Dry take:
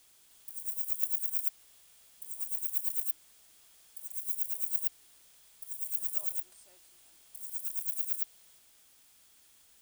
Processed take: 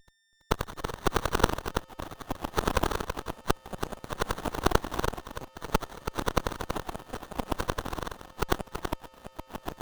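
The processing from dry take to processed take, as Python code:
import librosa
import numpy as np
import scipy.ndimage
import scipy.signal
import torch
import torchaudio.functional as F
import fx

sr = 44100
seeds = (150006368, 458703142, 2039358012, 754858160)

p1 = fx.block_reorder(x, sr, ms=101.0, group=5)
p2 = librosa.effects.preemphasis(p1, coef=0.8, zi=[0.0])
p3 = fx.level_steps(p2, sr, step_db=19)
p4 = p2 + (p3 * 10.0 ** (-1.0 / 20.0))
p5 = fx.power_curve(p4, sr, exponent=2.0)
p6 = p5 + 10.0 ** (-54.0 / 20.0) * np.sin(2.0 * np.pi * 1800.0 * np.arange(len(p5)) / sr)
p7 = fx.fixed_phaser(p6, sr, hz=2500.0, stages=4)
p8 = p7 + 10.0 ** (-7.0 / 20.0) * np.pad(p7, (int(329 * sr / 1000.0), 0))[:len(p7)]
p9 = fx.echo_pitch(p8, sr, ms=798, semitones=-6, count=3, db_per_echo=-6.0)
p10 = fx.running_max(p9, sr, window=17)
y = p10 * 10.0 ** (3.0 / 20.0)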